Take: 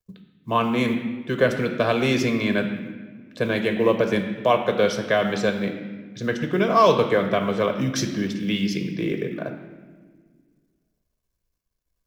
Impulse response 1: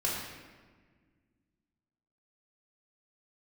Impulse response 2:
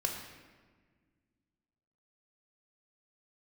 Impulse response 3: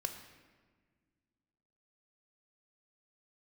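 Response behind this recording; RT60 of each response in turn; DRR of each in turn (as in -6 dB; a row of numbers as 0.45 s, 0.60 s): 3; 1.5 s, 1.5 s, 1.6 s; -5.5 dB, 1.0 dB, 5.5 dB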